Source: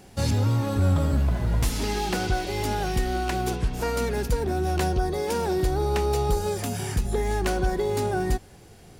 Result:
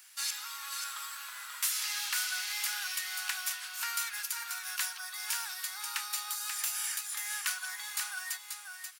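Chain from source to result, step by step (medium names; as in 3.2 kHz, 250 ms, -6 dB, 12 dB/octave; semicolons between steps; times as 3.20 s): steep high-pass 1.2 kHz 36 dB/octave; treble shelf 7.9 kHz +11 dB; on a send: delay 535 ms -6 dB; on the sum: trim -2.5 dB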